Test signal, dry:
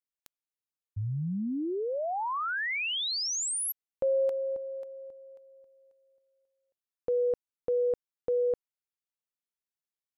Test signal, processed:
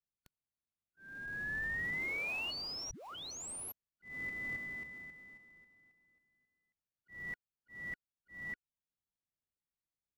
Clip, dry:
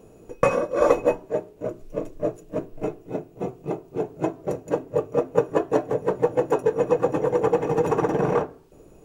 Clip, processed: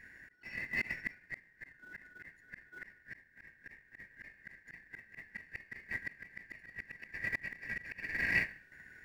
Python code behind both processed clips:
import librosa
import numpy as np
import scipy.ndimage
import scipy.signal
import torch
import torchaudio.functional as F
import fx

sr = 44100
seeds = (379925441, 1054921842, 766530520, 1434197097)

p1 = fx.band_shuffle(x, sr, order='3142')
p2 = fx.bass_treble(p1, sr, bass_db=13, treble_db=-7)
p3 = fx.sample_hold(p2, sr, seeds[0], rate_hz=1800.0, jitter_pct=20)
p4 = p2 + F.gain(torch.from_numpy(p3), -11.5).numpy()
p5 = fx.auto_swell(p4, sr, attack_ms=607.0)
y = F.gain(torch.from_numpy(p5), -6.0).numpy()